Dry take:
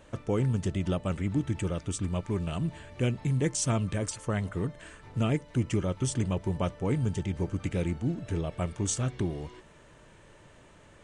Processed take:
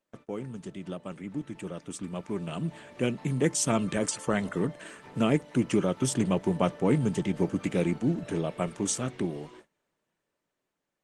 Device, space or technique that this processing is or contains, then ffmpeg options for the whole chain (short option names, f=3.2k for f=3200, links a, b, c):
video call: -filter_complex "[0:a]asplit=3[a][b][c];[a]afade=t=out:st=6.03:d=0.02[d];[b]lowshelf=f=130:g=3,afade=t=in:st=6.03:d=0.02,afade=t=out:st=7.57:d=0.02[e];[c]afade=t=in:st=7.57:d=0.02[f];[d][e][f]amix=inputs=3:normalize=0,highpass=f=160:w=0.5412,highpass=f=160:w=1.3066,dynaudnorm=f=750:g=7:m=13dB,agate=range=-22dB:threshold=-44dB:ratio=16:detection=peak,volume=-6.5dB" -ar 48000 -c:a libopus -b:a 20k